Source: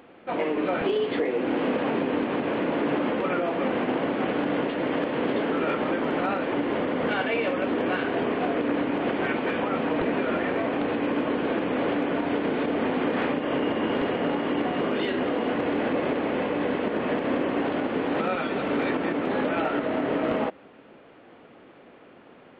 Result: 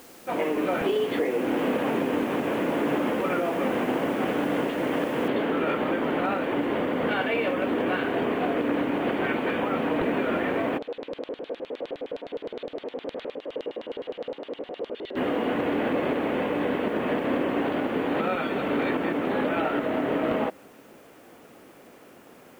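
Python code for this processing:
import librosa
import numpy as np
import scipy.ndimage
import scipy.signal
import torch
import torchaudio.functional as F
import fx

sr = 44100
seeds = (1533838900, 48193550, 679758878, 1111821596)

y = fx.noise_floor_step(x, sr, seeds[0], at_s=5.28, before_db=-52, after_db=-62, tilt_db=0.0)
y = fx.filter_lfo_bandpass(y, sr, shape='square', hz=9.7, low_hz=500.0, high_hz=3800.0, q=3.6, at=(10.77, 15.15), fade=0.02)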